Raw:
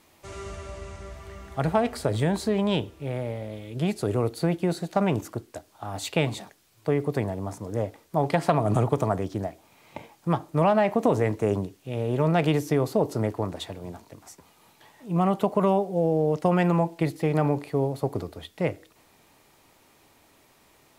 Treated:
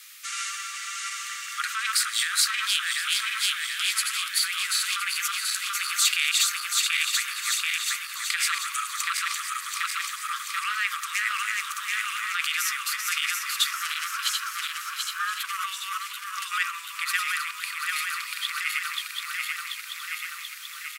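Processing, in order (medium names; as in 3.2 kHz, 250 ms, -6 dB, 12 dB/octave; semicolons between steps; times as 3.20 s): backward echo that repeats 367 ms, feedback 79%, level -3.5 dB; treble shelf 2.2 kHz +9 dB; peak limiter -15.5 dBFS, peak gain reduction 11.5 dB; 13.73–15.45 s: ring modulator 490 Hz; steep high-pass 1.2 kHz 96 dB/octave; delay 1020 ms -13.5 dB; trim +8.5 dB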